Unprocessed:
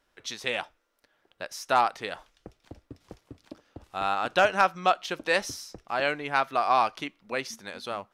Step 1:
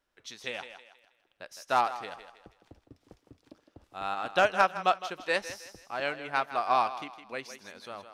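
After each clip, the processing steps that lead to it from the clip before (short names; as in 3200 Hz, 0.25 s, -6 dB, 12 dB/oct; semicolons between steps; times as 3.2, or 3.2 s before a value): on a send: thinning echo 0.16 s, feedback 39%, high-pass 290 Hz, level -9 dB; on the sum: upward expander 1.5:1, over -31 dBFS; gain -1.5 dB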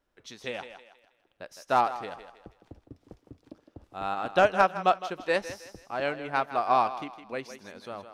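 tilt shelf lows +4.5 dB, about 920 Hz; gain +2 dB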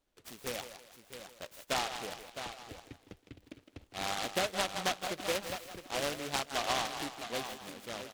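compressor 4:1, threshold -27 dBFS, peak gain reduction 10 dB; echo 0.661 s -9.5 dB; noise-modulated delay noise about 2300 Hz, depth 0.16 ms; gain -3 dB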